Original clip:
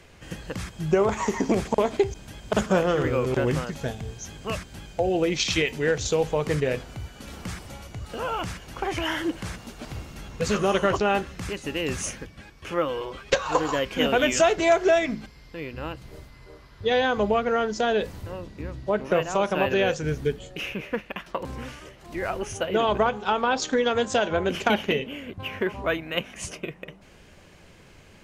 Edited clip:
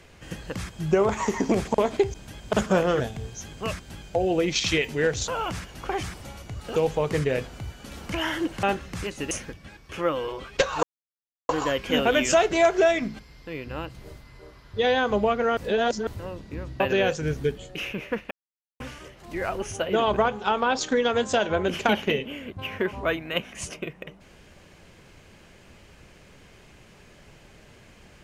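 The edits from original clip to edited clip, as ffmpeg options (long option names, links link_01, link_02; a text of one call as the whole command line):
ffmpeg -i in.wav -filter_complex "[0:a]asplit=14[link_01][link_02][link_03][link_04][link_05][link_06][link_07][link_08][link_09][link_10][link_11][link_12][link_13][link_14];[link_01]atrim=end=3.002[link_15];[link_02]atrim=start=3.838:end=6.122[link_16];[link_03]atrim=start=8.208:end=8.962[link_17];[link_04]atrim=start=7.478:end=8.212[link_18];[link_05]atrim=start=6.118:end=7.482[link_19];[link_06]atrim=start=8.958:end=9.472[link_20];[link_07]atrim=start=11.088:end=11.772[link_21];[link_08]atrim=start=12.038:end=13.56,asetpts=PTS-STARTPTS,afade=type=out:start_time=1.518:duration=0.004:curve=hsin,apad=pad_dur=0.66[link_22];[link_09]atrim=start=13.56:end=17.642,asetpts=PTS-STARTPTS,afade=type=in:duration=0.004:curve=hsin[link_23];[link_10]atrim=start=17.638:end=18.142,asetpts=PTS-STARTPTS,areverse[link_24];[link_11]atrim=start=18.138:end=18.872[link_25];[link_12]atrim=start=19.608:end=21.12,asetpts=PTS-STARTPTS,afade=type=out:start_time=1.508:duration=0.004:curve=hsin[link_26];[link_13]atrim=start=21.12:end=21.61,asetpts=PTS-STARTPTS,volume=0[link_27];[link_14]atrim=start=21.61,asetpts=PTS-STARTPTS,afade=type=in:duration=0.004:curve=hsin[link_28];[link_15][link_16]acrossfade=duration=0.004:curve1=hsin:curve2=hsin[link_29];[link_29][link_17]acrossfade=duration=0.004:curve1=hsin:curve2=hsin[link_30];[link_30][link_18]acrossfade=duration=0.004:curve1=hsin:curve2=hsin[link_31];[link_31][link_19]acrossfade=duration=0.004:curve1=hsin:curve2=hsin[link_32];[link_32][link_20]acrossfade=duration=0.004:curve1=hsin:curve2=hsin[link_33];[link_33][link_21]acrossfade=duration=0.004:curve1=hsin:curve2=hsin[link_34];[link_22][link_23]concat=n=2:v=0:a=1[link_35];[link_34][link_35]acrossfade=duration=0.004:curve1=hsin:curve2=hsin[link_36];[link_36][link_24]acrossfade=duration=0.004:curve1=hsin:curve2=hsin[link_37];[link_37][link_25]acrossfade=duration=0.004:curve1=hsin:curve2=hsin[link_38];[link_26][link_27][link_28]concat=n=3:v=0:a=1[link_39];[link_38][link_39]acrossfade=duration=0.004:curve1=hsin:curve2=hsin" out.wav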